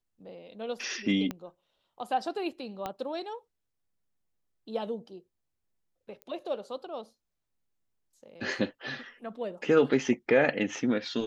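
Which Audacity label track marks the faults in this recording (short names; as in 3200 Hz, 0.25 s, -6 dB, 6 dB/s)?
1.310000	1.310000	pop -20 dBFS
2.860000	2.860000	pop -20 dBFS
6.220000	6.220000	pop -28 dBFS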